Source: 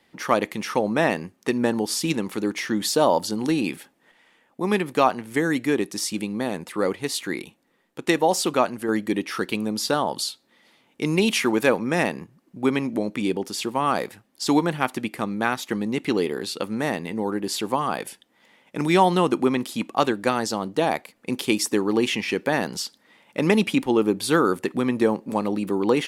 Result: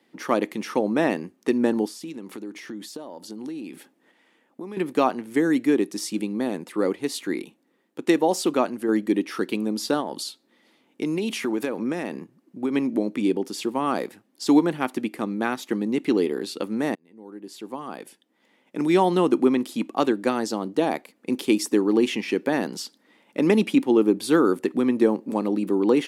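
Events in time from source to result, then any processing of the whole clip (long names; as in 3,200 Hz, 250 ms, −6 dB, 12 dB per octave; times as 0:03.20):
0:01.87–0:04.77: downward compressor 8 to 1, threshold −33 dBFS
0:10.00–0:12.74: downward compressor, threshold −22 dBFS
0:16.95–0:19.21: fade in
whole clip: high-pass filter 160 Hz 12 dB per octave; parametric band 300 Hz +8.5 dB 1.3 octaves; level −4.5 dB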